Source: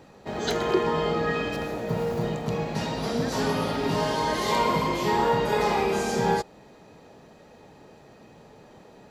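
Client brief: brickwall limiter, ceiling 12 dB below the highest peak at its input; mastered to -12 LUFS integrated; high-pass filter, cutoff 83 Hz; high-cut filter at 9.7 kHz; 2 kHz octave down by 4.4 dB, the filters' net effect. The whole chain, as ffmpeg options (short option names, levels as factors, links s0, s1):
-af "highpass=83,lowpass=9700,equalizer=f=2000:t=o:g=-5.5,volume=8.91,alimiter=limit=0.708:level=0:latency=1"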